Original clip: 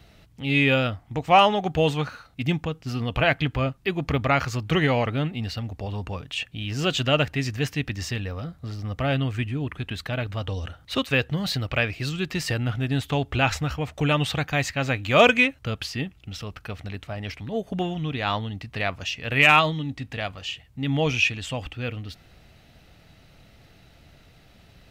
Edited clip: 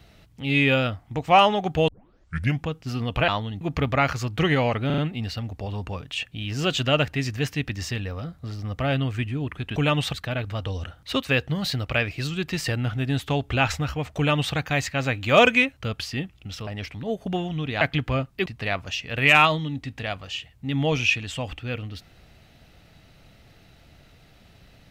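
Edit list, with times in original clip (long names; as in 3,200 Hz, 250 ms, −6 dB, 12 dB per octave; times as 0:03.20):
0:01.88: tape start 0.75 s
0:03.28–0:03.93: swap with 0:18.27–0:18.60
0:05.18: stutter 0.04 s, 4 plays
0:13.99–0:14.37: duplicate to 0:09.96
0:16.49–0:17.13: remove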